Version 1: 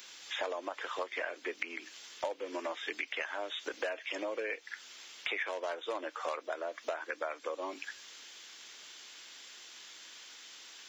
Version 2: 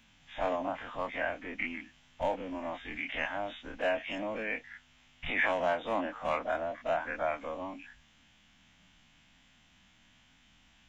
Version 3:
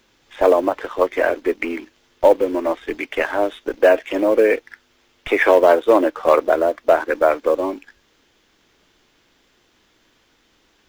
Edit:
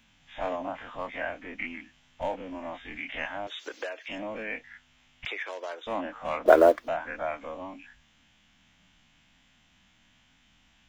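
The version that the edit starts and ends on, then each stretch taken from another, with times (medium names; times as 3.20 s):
2
3.47–4.08 s: from 1
5.25–5.87 s: from 1
6.46–6.88 s: from 3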